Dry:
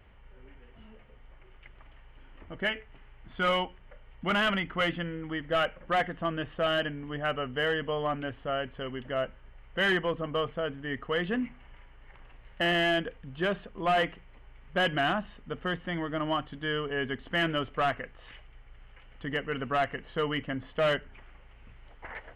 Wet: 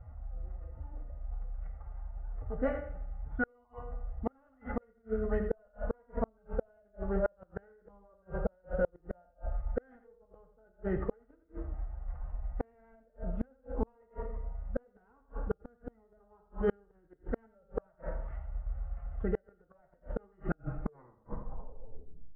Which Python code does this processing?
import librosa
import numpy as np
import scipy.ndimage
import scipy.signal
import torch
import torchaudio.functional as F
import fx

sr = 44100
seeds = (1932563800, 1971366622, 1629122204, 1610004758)

y = fx.tape_stop_end(x, sr, length_s=2.07)
y = fx.rider(y, sr, range_db=3, speed_s=2.0)
y = scipy.signal.sosfilt(scipy.signal.butter(4, 1200.0, 'lowpass', fs=sr, output='sos'), y)
y = y + 0.67 * np.pad(y, (int(2.0 * sr / 1000.0), 0))[:len(y)]
y = fx.dynamic_eq(y, sr, hz=350.0, q=7.2, threshold_db=-49.0, ratio=4.0, max_db=6)
y = fx.rev_fdn(y, sr, rt60_s=0.9, lf_ratio=1.0, hf_ratio=0.75, size_ms=89.0, drr_db=6.5)
y = fx.pitch_keep_formants(y, sr, semitones=5.0)
y = fx.low_shelf(y, sr, hz=70.0, db=9.5)
y = fx.echo_feedback(y, sr, ms=84, feedback_pct=18, wet_db=-9.5)
y = fx.gate_flip(y, sr, shuts_db=-22.0, range_db=-40)
y = F.gain(torch.from_numpy(y), 3.5).numpy()